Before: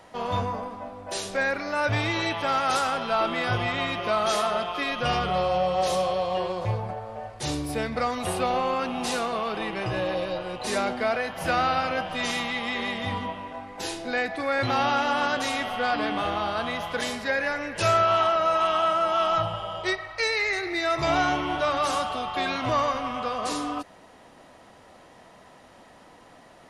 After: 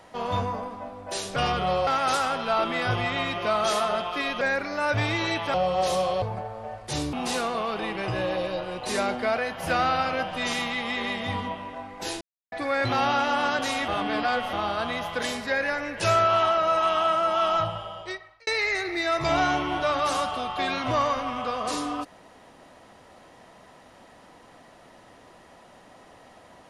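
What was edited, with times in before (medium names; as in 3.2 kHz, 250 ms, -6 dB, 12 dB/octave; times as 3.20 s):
1.36–2.49 s: swap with 5.03–5.54 s
6.22–6.74 s: delete
7.65–8.91 s: delete
13.99–14.30 s: mute
15.66–16.31 s: reverse
19.33–20.25 s: fade out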